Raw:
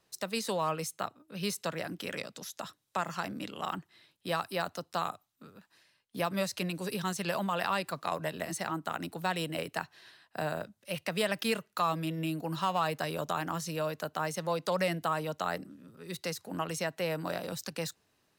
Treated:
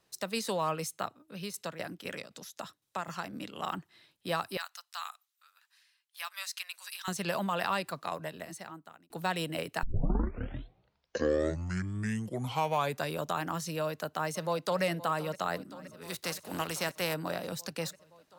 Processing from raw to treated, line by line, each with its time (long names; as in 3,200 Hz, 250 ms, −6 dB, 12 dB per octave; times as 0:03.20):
0:01.34–0:03.53: shaped tremolo saw down 3.9 Hz, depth 75% → 50%
0:04.57–0:07.08: Bessel high-pass filter 1,600 Hz, order 6
0:07.71–0:09.10: fade out
0:09.83: tape start 3.36 s
0:13.83–0:14.83: delay throw 520 ms, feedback 80%, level −16.5 dB
0:16.01–0:17.13: compressing power law on the bin magnitudes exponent 0.66